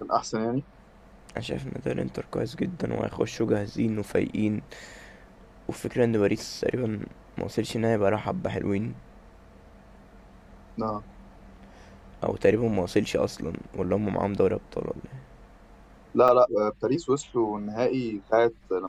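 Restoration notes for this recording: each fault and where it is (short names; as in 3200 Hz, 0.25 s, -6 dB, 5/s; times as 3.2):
16.28–16.29 gap 5.6 ms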